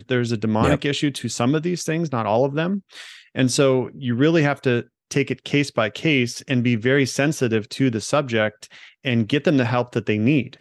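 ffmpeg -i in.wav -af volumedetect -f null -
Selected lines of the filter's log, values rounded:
mean_volume: -20.9 dB
max_volume: -5.4 dB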